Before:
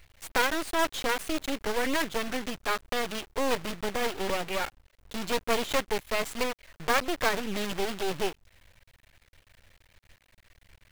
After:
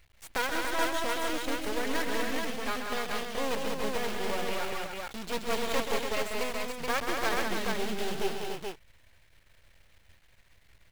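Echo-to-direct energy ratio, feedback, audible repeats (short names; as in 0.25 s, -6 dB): 1.0 dB, no steady repeat, 4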